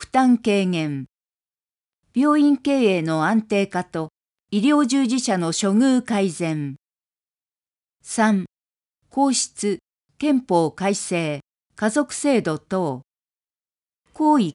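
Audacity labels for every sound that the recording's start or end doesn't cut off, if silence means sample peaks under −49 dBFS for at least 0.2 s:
2.150000	4.080000	sound
4.530000	6.760000	sound
8.040000	8.460000	sound
9.120000	9.790000	sound
10.200000	11.400000	sound
11.780000	13.020000	sound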